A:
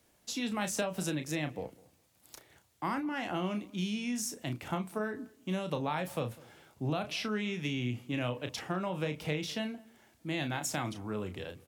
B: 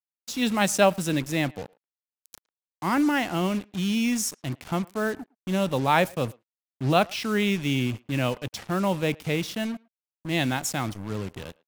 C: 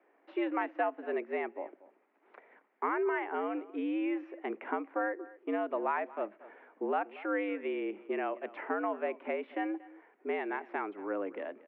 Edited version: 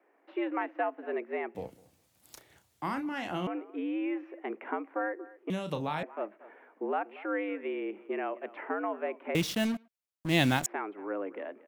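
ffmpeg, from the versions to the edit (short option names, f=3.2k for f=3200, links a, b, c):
-filter_complex "[0:a]asplit=2[a][b];[2:a]asplit=4[c][d][e][f];[c]atrim=end=1.552[g];[a]atrim=start=1.548:end=3.472[h];[d]atrim=start=3.468:end=5.502[i];[b]atrim=start=5.498:end=6.032[j];[e]atrim=start=6.028:end=9.352[k];[1:a]atrim=start=9.348:end=10.662[l];[f]atrim=start=10.658[m];[g][h]acrossfade=d=0.004:c1=hsin:c2=hsin[n];[n][i]acrossfade=d=0.004:c1=hsin:c2=hsin[o];[o][j]acrossfade=d=0.004:c1=hsin:c2=hsin[p];[p][k]acrossfade=d=0.004:c1=hsin:c2=hsin[q];[q][l]acrossfade=d=0.004:c1=hsin:c2=hsin[r];[r][m]acrossfade=d=0.004:c1=hsin:c2=hsin"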